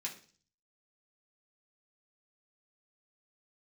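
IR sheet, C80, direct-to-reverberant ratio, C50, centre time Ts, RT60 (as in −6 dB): 15.5 dB, −3.5 dB, 11.0 dB, 16 ms, 0.40 s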